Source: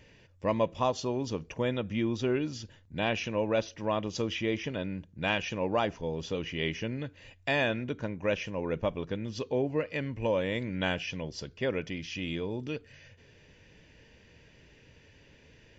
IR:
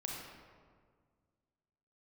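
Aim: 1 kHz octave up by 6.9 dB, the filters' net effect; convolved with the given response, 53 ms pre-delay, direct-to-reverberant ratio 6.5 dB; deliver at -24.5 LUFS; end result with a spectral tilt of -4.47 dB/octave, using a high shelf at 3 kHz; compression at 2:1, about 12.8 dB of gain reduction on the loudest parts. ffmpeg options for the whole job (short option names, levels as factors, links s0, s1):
-filter_complex "[0:a]equalizer=f=1000:t=o:g=7.5,highshelf=f=3000:g=8.5,acompressor=threshold=0.00708:ratio=2,asplit=2[s0][s1];[1:a]atrim=start_sample=2205,adelay=53[s2];[s1][s2]afir=irnorm=-1:irlink=0,volume=0.447[s3];[s0][s3]amix=inputs=2:normalize=0,volume=5.01"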